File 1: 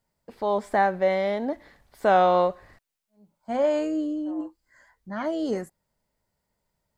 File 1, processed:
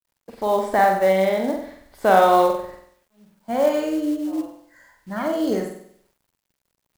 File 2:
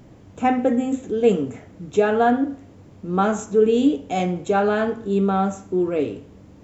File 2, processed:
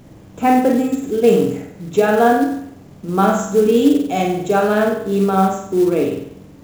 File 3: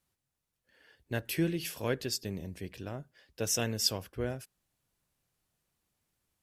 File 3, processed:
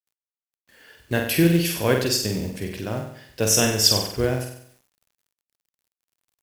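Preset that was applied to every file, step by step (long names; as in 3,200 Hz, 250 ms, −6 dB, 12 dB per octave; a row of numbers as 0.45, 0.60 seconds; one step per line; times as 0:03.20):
flutter between parallel walls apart 8.1 metres, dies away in 0.64 s
log-companded quantiser 6 bits
normalise the peak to −1.5 dBFS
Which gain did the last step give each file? +3.0, +3.0, +10.5 decibels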